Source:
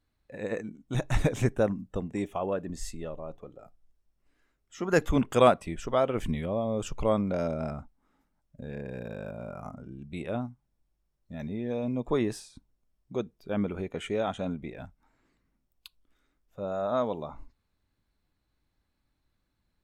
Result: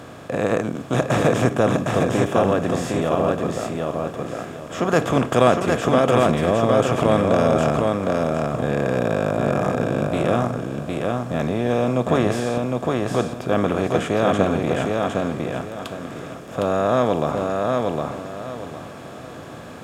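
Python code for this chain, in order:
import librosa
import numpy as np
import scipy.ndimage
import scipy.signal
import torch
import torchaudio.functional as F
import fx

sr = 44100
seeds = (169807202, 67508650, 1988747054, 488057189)

y = fx.bin_compress(x, sr, power=0.4)
y = scipy.signal.sosfilt(scipy.signal.butter(4, 87.0, 'highpass', fs=sr, output='sos'), y)
y = fx.echo_feedback(y, sr, ms=759, feedback_pct=28, wet_db=-3)
y = F.gain(torch.from_numpy(y), 1.5).numpy()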